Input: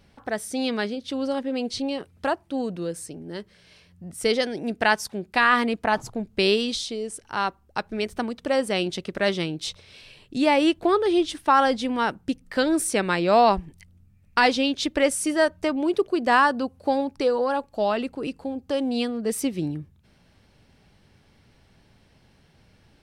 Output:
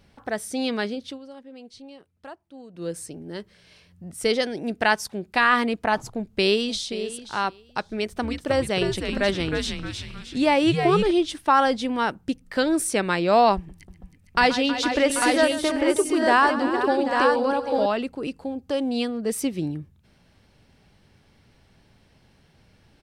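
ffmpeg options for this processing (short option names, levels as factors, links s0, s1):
-filter_complex "[0:a]asplit=2[s0][s1];[s1]afade=t=in:st=6.11:d=0.01,afade=t=out:st=6.91:d=0.01,aecho=0:1:530|1060:0.188365|0.0282547[s2];[s0][s2]amix=inputs=2:normalize=0,asettb=1/sr,asplit=3[s3][s4][s5];[s3]atrim=end=7.854[s6];[s4]atrim=start=7.85:end=11.11,asetpts=PTS-STARTPTS,afade=t=in:d=0.004:c=qsin,afade=t=out:st=3.256:d=0.004:c=qsin,asplit=7[s7][s8][s9][s10][s11][s12][s13];[s8]adelay=311,afreqshift=-140,volume=0.562[s14];[s9]adelay=622,afreqshift=-280,volume=0.254[s15];[s10]adelay=933,afreqshift=-420,volume=0.114[s16];[s11]adelay=1244,afreqshift=-560,volume=0.0513[s17];[s12]adelay=1555,afreqshift=-700,volume=0.0232[s18];[s13]adelay=1866,afreqshift=-840,volume=0.0104[s19];[s7][s14][s15][s16][s17][s18][s19]amix=inputs=7:normalize=0,atrim=end_sample=143766[s20];[s5]atrim=start=11.106[s21];[s6][s20]acrossfade=d=0.004:c1=hsin:c2=qsin[s22];[s22][s21]acrossfade=d=0.004:c1=qsin:c2=hsin,asettb=1/sr,asplit=3[s23][s24][s25];[s23]atrim=end=13.564[s26];[s24]atrim=start=13.56:end=17.86,asetpts=PTS-STARTPTS,afade=t=in:d=0.004:c=qsin,afade=t=out:st=4.296:d=0.004:c=qsin,aecho=1:1:131|319|457|461|787|847:0.211|0.224|0.188|0.178|0.266|0.596,atrim=end_sample=189630[s27];[s25]atrim=start=17.856[s28];[s26][s27]acrossfade=d=0.004:c1=hsin:c2=qsin[s29];[s29][s28]acrossfade=d=0.004:c1=qsin:c2=hsin,asplit=3[s30][s31][s32];[s30]atrim=end=1.19,asetpts=PTS-STARTPTS,afade=t=out:st=1.04:d=0.15:silence=0.158489[s33];[s31]atrim=start=1.19:end=2.73,asetpts=PTS-STARTPTS,volume=0.158[s34];[s32]atrim=start=2.73,asetpts=PTS-STARTPTS,afade=t=in:d=0.15:silence=0.158489[s35];[s33][s34][s35]concat=n=3:v=0:a=1"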